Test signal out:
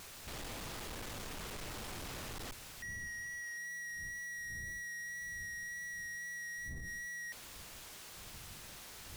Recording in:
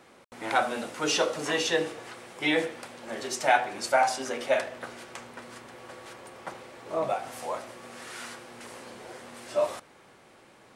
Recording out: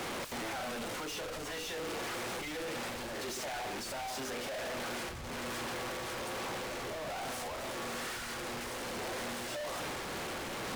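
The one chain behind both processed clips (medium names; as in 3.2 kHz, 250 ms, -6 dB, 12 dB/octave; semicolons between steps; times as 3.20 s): one-bit comparator; wind noise 110 Hz -47 dBFS; treble shelf 9.1 kHz -7.5 dB; peak limiter -31.5 dBFS; wow and flutter 16 cents; trim -6 dB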